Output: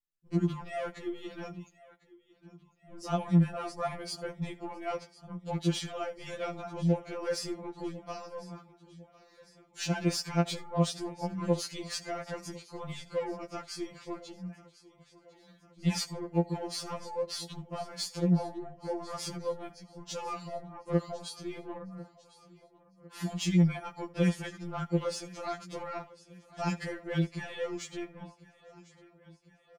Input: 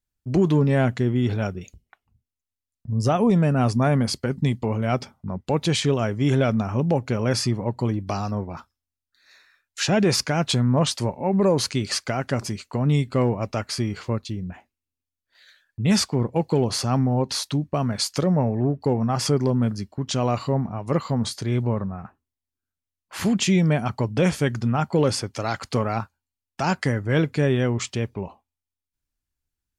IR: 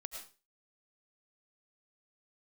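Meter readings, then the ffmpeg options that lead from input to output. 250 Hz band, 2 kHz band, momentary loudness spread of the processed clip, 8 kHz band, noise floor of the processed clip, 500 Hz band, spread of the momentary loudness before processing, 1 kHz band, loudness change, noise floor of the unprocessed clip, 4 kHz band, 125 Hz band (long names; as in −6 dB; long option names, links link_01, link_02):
−10.5 dB, −11.5 dB, 14 LU, −11.0 dB, −64 dBFS, −11.0 dB, 9 LU, −10.5 dB, −11.0 dB, below −85 dBFS, −11.0 dB, −12.0 dB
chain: -filter_complex "[0:a]aecho=1:1:1051|2102|3153|4204|5255:0.112|0.0662|0.0391|0.023|0.0136,aeval=exprs='0.316*(cos(1*acos(clip(val(0)/0.316,-1,1)))-cos(1*PI/2))+0.0112*(cos(7*acos(clip(val(0)/0.316,-1,1)))-cos(7*PI/2))+0.00178*(cos(8*acos(clip(val(0)/0.316,-1,1)))-cos(8*PI/2))':channel_layout=same[link_01];[1:a]atrim=start_sample=2205,atrim=end_sample=3528[link_02];[link_01][link_02]afir=irnorm=-1:irlink=0,afftfilt=real='re*2.83*eq(mod(b,8),0)':imag='im*2.83*eq(mod(b,8),0)':win_size=2048:overlap=0.75,volume=-3.5dB"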